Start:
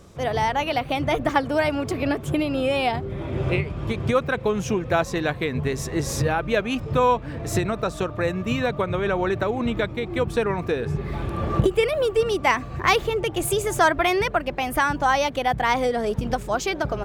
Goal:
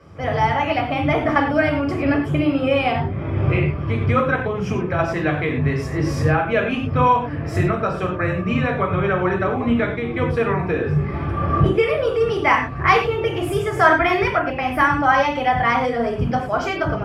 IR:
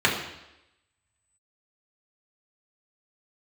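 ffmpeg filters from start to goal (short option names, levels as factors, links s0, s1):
-filter_complex "[0:a]asettb=1/sr,asplit=3[s0][s1][s2];[s0]atrim=end=4.404[s3];[s1]atrim=start=4.4:end=4.99,asetpts=PTS-STARTPTS,afade=t=in:d=0.004:c=qsin,afade=t=out:st=0.586:d=0.004:c=qsin,acrossover=split=300[s4][s5];[s5]acompressor=threshold=0.0631:ratio=6[s6];[s4][s6]amix=inputs=2:normalize=0[s7];[s2]atrim=start=4.986[s8];[s3][s7]acrossfade=d=0.004:c1=hsin:c2=qsin[s9];[s9][s8]acrossfade=d=0.004:c1=qsin:c2=hsin[s10];[1:a]atrim=start_sample=2205,atrim=end_sample=3969,asetrate=31311,aresample=44100[s11];[s10][s11]afir=irnorm=-1:irlink=0,volume=0.168"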